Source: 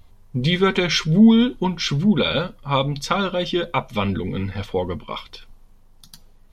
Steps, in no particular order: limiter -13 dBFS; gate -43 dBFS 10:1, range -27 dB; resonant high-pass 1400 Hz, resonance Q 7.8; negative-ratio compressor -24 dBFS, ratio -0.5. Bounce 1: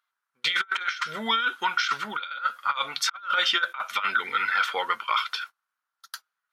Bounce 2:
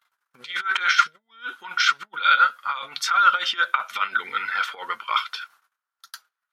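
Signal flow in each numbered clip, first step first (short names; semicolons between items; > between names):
resonant high-pass > gate > negative-ratio compressor > limiter; gate > negative-ratio compressor > limiter > resonant high-pass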